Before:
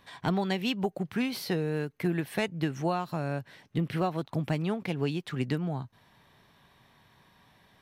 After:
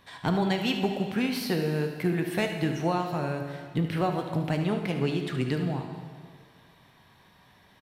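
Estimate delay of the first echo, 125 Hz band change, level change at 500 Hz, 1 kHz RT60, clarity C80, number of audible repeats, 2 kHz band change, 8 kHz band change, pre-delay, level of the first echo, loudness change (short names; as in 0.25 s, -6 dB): 73 ms, +2.5 dB, +3.0 dB, 1.9 s, 7.5 dB, 1, +3.0 dB, +3.0 dB, 7 ms, -12.0 dB, +3.0 dB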